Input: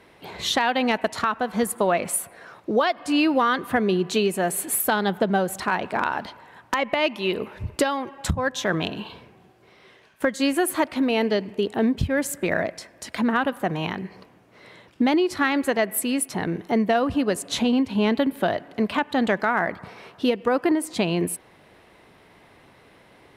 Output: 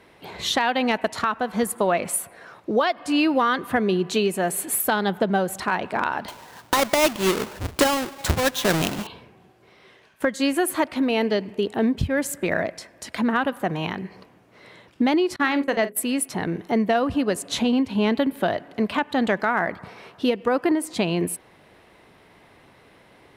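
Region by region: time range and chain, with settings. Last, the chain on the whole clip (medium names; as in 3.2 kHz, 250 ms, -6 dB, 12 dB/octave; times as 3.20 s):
6.28–9.07 s: square wave that keeps the level + bass shelf 420 Hz -2.5 dB
15.36–16.03 s: gate -28 dBFS, range -31 dB + hum notches 60/120/180/240/300/360/420/480/540 Hz + doubling 46 ms -13.5 dB
whole clip: none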